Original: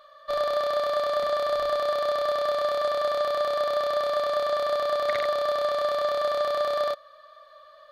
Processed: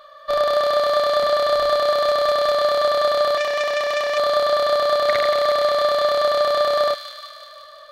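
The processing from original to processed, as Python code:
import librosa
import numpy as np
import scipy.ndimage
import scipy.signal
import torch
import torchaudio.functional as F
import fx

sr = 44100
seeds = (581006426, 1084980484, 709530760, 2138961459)

y = fx.echo_wet_highpass(x, sr, ms=176, feedback_pct=66, hz=2200.0, wet_db=-5.5)
y = fx.overload_stage(y, sr, gain_db=18.5, at=(1.9, 2.51))
y = fx.transformer_sat(y, sr, knee_hz=2400.0, at=(3.37, 4.18))
y = y * 10.0 ** (7.0 / 20.0)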